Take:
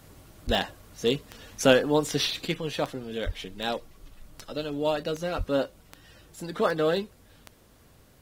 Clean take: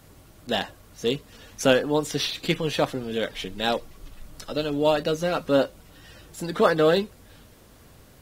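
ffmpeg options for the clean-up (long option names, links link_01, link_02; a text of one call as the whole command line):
ffmpeg -i in.wav -filter_complex "[0:a]adeclick=threshold=4,asplit=3[link_01][link_02][link_03];[link_01]afade=type=out:start_time=0.46:duration=0.02[link_04];[link_02]highpass=frequency=140:width=0.5412,highpass=frequency=140:width=1.3066,afade=type=in:start_time=0.46:duration=0.02,afade=type=out:start_time=0.58:duration=0.02[link_05];[link_03]afade=type=in:start_time=0.58:duration=0.02[link_06];[link_04][link_05][link_06]amix=inputs=3:normalize=0,asplit=3[link_07][link_08][link_09];[link_07]afade=type=out:start_time=3.25:duration=0.02[link_10];[link_08]highpass=frequency=140:width=0.5412,highpass=frequency=140:width=1.3066,afade=type=in:start_time=3.25:duration=0.02,afade=type=out:start_time=3.37:duration=0.02[link_11];[link_09]afade=type=in:start_time=3.37:duration=0.02[link_12];[link_10][link_11][link_12]amix=inputs=3:normalize=0,asplit=3[link_13][link_14][link_15];[link_13]afade=type=out:start_time=5.37:duration=0.02[link_16];[link_14]highpass=frequency=140:width=0.5412,highpass=frequency=140:width=1.3066,afade=type=in:start_time=5.37:duration=0.02,afade=type=out:start_time=5.49:duration=0.02[link_17];[link_15]afade=type=in:start_time=5.49:duration=0.02[link_18];[link_16][link_17][link_18]amix=inputs=3:normalize=0,asetnsamples=nb_out_samples=441:pad=0,asendcmd='2.45 volume volume 5.5dB',volume=0dB" out.wav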